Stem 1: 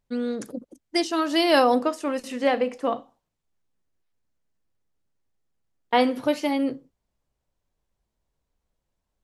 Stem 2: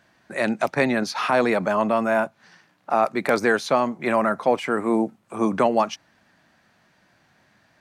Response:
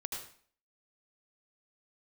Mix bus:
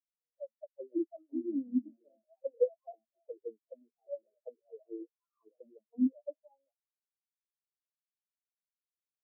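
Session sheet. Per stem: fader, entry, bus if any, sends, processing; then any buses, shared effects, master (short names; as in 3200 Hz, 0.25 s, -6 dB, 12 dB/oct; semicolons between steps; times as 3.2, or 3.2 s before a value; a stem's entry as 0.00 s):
-2.0 dB, 0.00 s, no send, no echo send, dry
-3.0 dB, 0.00 s, no send, echo send -8.5 dB, dry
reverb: off
echo: feedback echo 0.524 s, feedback 47%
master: low shelf 380 Hz -3.5 dB; auto-wah 270–2100 Hz, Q 3.9, down, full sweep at -18 dBFS; spectral expander 4:1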